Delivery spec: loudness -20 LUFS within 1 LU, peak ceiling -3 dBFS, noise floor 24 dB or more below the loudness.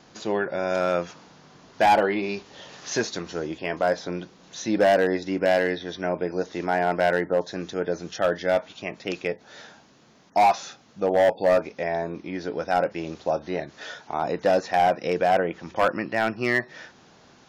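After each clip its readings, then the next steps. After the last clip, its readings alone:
clipped 1.0%; flat tops at -13.5 dBFS; loudness -25.0 LUFS; peak -13.5 dBFS; loudness target -20.0 LUFS
-> clip repair -13.5 dBFS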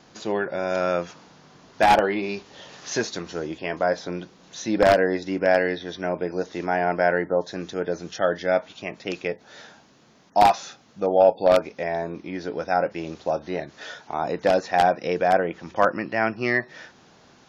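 clipped 0.0%; loudness -24.0 LUFS; peak -4.5 dBFS; loudness target -20.0 LUFS
-> gain +4 dB; limiter -3 dBFS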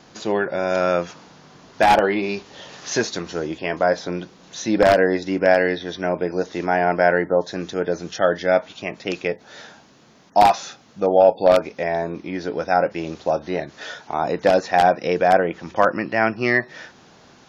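loudness -20.5 LUFS; peak -3.0 dBFS; noise floor -51 dBFS

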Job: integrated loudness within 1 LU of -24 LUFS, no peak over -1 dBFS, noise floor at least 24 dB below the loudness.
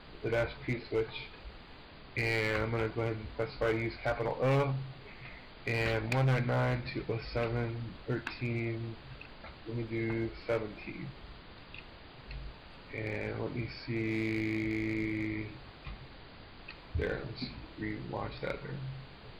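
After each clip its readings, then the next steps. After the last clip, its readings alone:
clipped 1.2%; flat tops at -24.5 dBFS; noise floor -52 dBFS; noise floor target -59 dBFS; loudness -35.0 LUFS; peak -24.5 dBFS; loudness target -24.0 LUFS
-> clip repair -24.5 dBFS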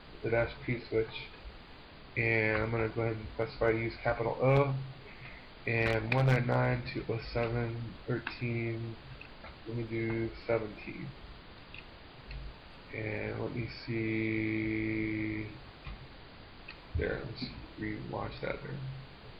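clipped 0.0%; noise floor -52 dBFS; noise floor target -58 dBFS
-> noise print and reduce 6 dB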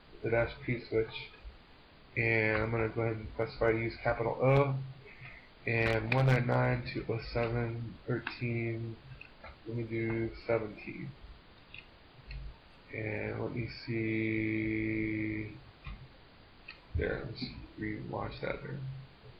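noise floor -58 dBFS; loudness -34.0 LUFS; peak -15.5 dBFS; loudness target -24.0 LUFS
-> gain +10 dB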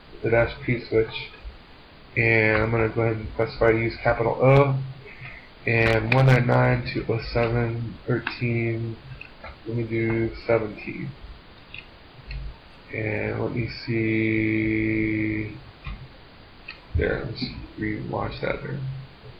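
loudness -24.0 LUFS; peak -5.5 dBFS; noise floor -48 dBFS

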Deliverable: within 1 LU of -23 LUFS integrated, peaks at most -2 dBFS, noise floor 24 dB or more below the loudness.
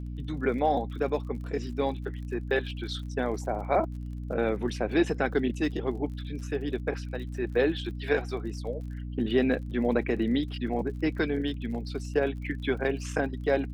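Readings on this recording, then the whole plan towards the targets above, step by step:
ticks 44/s; hum 60 Hz; harmonics up to 300 Hz; hum level -33 dBFS; loudness -30.0 LUFS; peak -12.0 dBFS; loudness target -23.0 LUFS
-> de-click; de-hum 60 Hz, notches 5; gain +7 dB

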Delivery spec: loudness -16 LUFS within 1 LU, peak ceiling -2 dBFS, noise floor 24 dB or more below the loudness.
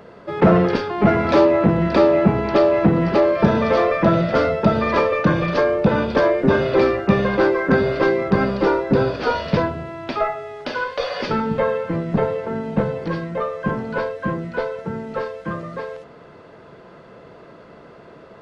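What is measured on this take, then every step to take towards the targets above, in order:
loudness -19.0 LUFS; peak -2.5 dBFS; loudness target -16.0 LUFS
-> gain +3 dB; limiter -2 dBFS

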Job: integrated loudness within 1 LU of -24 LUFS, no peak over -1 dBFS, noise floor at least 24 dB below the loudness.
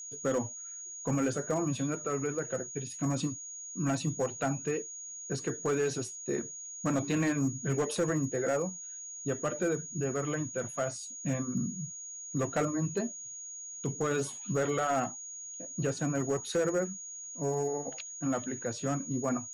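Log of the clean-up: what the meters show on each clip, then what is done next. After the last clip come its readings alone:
clipped 0.8%; flat tops at -23.0 dBFS; steady tone 6700 Hz; tone level -41 dBFS; loudness -33.0 LUFS; peak -23.0 dBFS; loudness target -24.0 LUFS
-> clip repair -23 dBFS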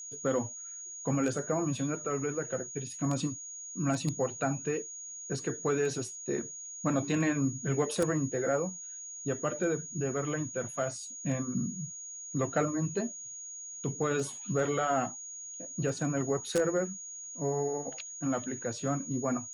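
clipped 0.0%; steady tone 6700 Hz; tone level -41 dBFS
-> notch 6700 Hz, Q 30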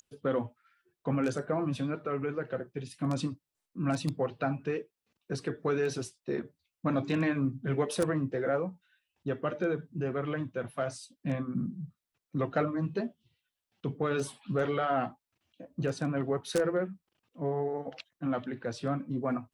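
steady tone none; loudness -33.0 LUFS; peak -13.5 dBFS; loudness target -24.0 LUFS
-> gain +9 dB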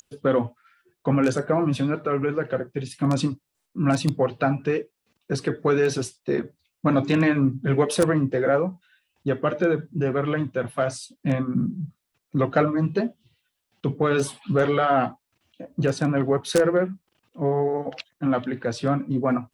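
loudness -24.0 LUFS; peak -4.5 dBFS; noise floor -80 dBFS

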